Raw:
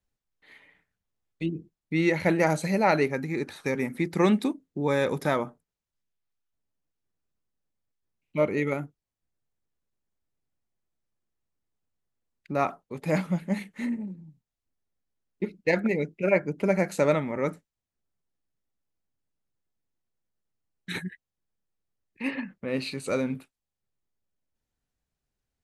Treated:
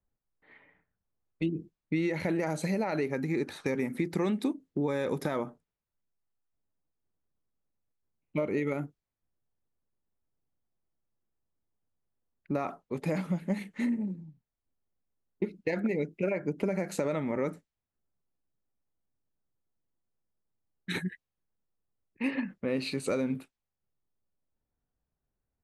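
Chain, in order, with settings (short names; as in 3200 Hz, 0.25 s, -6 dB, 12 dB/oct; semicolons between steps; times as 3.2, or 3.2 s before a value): limiter -16.5 dBFS, peak gain reduction 7.5 dB; compressor, threshold -29 dBFS, peak gain reduction 8.5 dB; dynamic EQ 320 Hz, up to +4 dB, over -44 dBFS, Q 0.75; low-pass opened by the level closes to 1300 Hz, open at -31.5 dBFS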